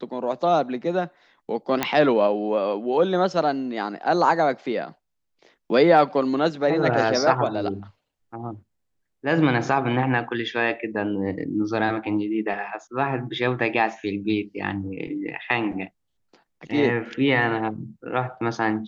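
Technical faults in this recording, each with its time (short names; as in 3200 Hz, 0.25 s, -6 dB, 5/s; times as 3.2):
1.83 pop -6 dBFS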